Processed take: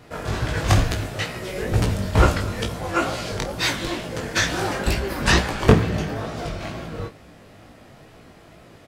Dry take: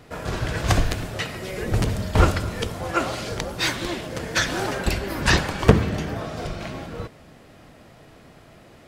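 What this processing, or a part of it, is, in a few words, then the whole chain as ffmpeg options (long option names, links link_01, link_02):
double-tracked vocal: -filter_complex "[0:a]asplit=2[link_01][link_02];[link_02]adelay=30,volume=-11dB[link_03];[link_01][link_03]amix=inputs=2:normalize=0,flanger=delay=16.5:depth=4.9:speed=2.2,volume=4dB"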